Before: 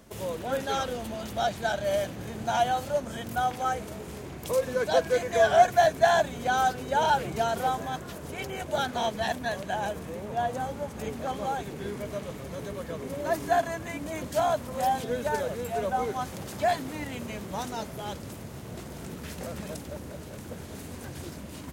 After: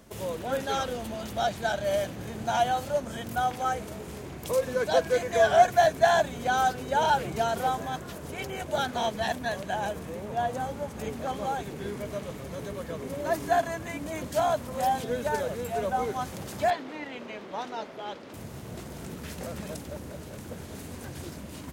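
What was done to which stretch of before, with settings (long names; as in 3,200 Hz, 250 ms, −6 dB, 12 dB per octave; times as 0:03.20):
0:16.70–0:18.34: three-way crossover with the lows and the highs turned down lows −22 dB, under 240 Hz, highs −23 dB, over 4,700 Hz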